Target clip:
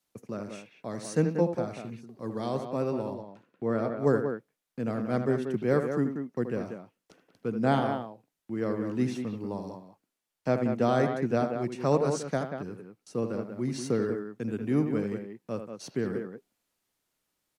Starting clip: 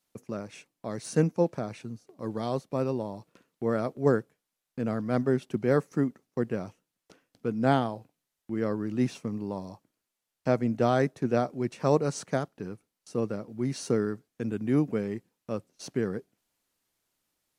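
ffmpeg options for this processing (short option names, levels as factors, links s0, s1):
-filter_complex "[0:a]asettb=1/sr,asplit=3[s0][s1][s2];[s0]atrim=end=3.144[s3];[s1]atrim=start=3.14:end=4,asetpts=PTS-STARTPTS,afade=t=in:d=0.004:c=qsin,afade=t=out:st=0.856:d=0.004:c=qsin,highshelf=f=5600:g=-11[s4];[s2]atrim=start=3.996[s5];[s3][s4]acrossfade=d=0.004:c1=hsin:c2=qsin[s6];[s6][s5]acrossfade=d=0.004:c1=qsin:c2=hsin,acrossover=split=120|4000[s7][s8][s9];[s8]aecho=1:1:78.72|186.6:0.398|0.447[s10];[s7][s10][s9]amix=inputs=3:normalize=0,volume=0.841"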